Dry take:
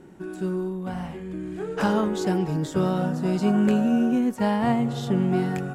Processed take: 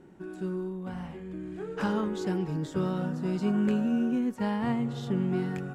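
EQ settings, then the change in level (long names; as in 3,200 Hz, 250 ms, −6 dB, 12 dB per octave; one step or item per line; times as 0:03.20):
dynamic equaliser 680 Hz, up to −7 dB, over −43 dBFS, Q 3
high-shelf EQ 6,500 Hz −7.5 dB
−5.5 dB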